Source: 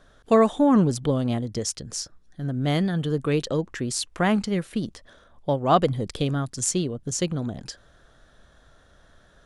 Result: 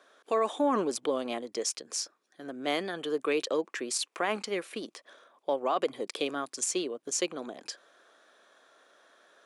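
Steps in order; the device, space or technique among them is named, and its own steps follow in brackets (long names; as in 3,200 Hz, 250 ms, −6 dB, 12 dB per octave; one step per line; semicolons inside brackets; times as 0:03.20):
laptop speaker (high-pass filter 330 Hz 24 dB per octave; parametric band 1,100 Hz +4 dB 0.23 octaves; parametric band 2,400 Hz +6.5 dB 0.25 octaves; brickwall limiter −16 dBFS, peak gain reduction 11.5 dB)
level −2 dB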